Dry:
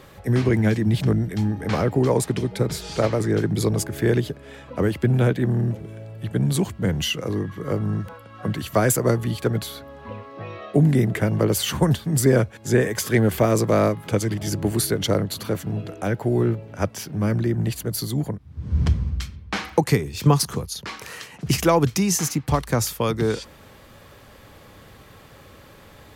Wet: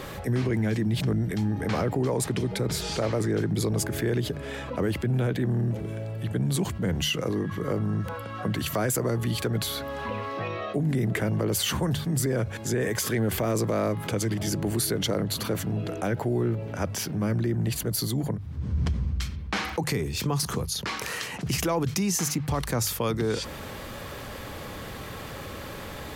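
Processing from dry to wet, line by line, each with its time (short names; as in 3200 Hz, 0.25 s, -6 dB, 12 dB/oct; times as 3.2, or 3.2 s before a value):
8.66–10.48 mismatched tape noise reduction encoder only
whole clip: limiter -13.5 dBFS; notches 50/100/150 Hz; fast leveller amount 50%; gain -5.5 dB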